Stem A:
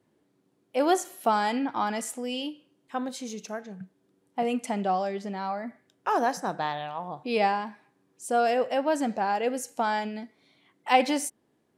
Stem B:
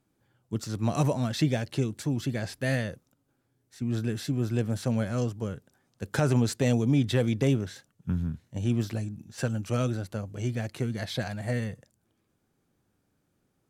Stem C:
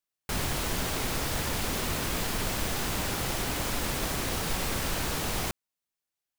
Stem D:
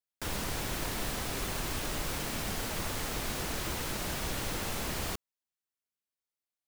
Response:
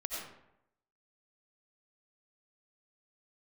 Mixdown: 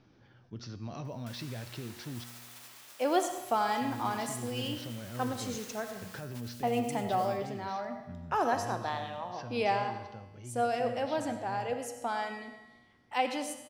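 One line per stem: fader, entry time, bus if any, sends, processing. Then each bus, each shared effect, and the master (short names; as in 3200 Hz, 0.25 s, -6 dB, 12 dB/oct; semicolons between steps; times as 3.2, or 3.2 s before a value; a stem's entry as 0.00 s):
+1.0 dB, 2.25 s, send -6.5 dB, HPF 220 Hz
-8.5 dB, 0.00 s, muted 2.24–3.28, no send, elliptic low-pass 5700 Hz; limiter -19.5 dBFS, peak gain reduction 5.5 dB; fast leveller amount 50%
-12.5 dB, 1.85 s, send -3.5 dB, spectral gate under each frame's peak -25 dB weak
-11.5 dB, 1.05 s, send -8.5 dB, upward compressor, threshold -38 dBFS; Bessel high-pass 1000 Hz, order 2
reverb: on, RT60 0.80 s, pre-delay 50 ms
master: vocal rider within 5 dB 2 s; resonator 120 Hz, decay 1.5 s, mix 70%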